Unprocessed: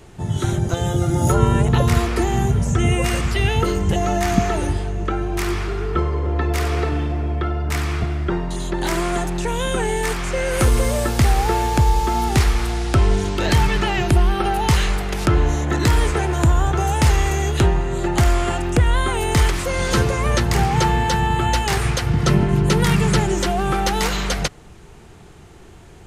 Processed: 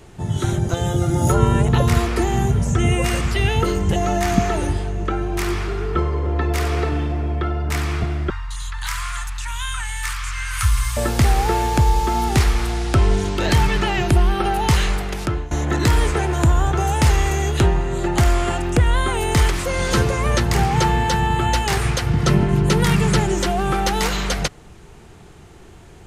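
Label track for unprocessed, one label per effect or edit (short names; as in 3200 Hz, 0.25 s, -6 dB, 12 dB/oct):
8.300000	10.970000	elliptic band-stop 100–1100 Hz
14.820000	15.510000	fade out equal-power, to -19.5 dB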